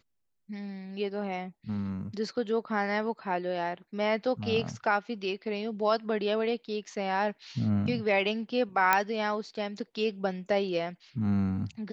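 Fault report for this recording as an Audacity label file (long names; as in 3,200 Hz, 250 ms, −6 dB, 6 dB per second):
8.930000	8.930000	click −8 dBFS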